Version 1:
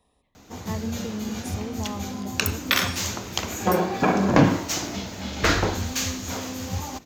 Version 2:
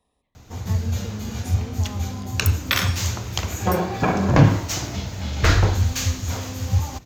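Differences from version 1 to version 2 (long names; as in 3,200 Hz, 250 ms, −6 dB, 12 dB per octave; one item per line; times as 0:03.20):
speech −4.5 dB
background: add low shelf with overshoot 160 Hz +9 dB, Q 1.5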